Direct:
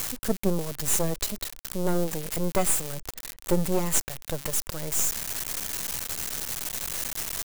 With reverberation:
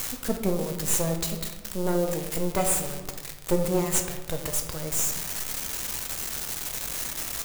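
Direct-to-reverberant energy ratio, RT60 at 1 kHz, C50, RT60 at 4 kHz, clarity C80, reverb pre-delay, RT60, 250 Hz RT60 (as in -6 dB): 3.5 dB, 1.1 s, 7.0 dB, 0.70 s, 9.0 dB, 4 ms, 1.2 s, 1.5 s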